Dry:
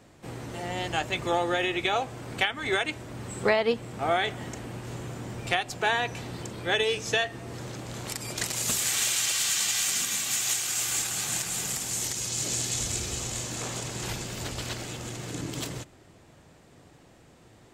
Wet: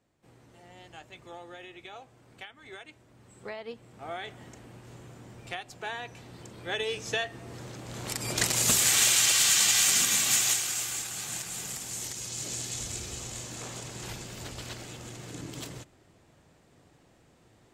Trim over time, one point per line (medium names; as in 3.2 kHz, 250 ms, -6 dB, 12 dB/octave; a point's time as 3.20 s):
3.16 s -19 dB
4.36 s -11 dB
6.23 s -11 dB
7.02 s -4.5 dB
7.80 s -4.5 dB
8.37 s +4 dB
10.35 s +4 dB
10.97 s -6 dB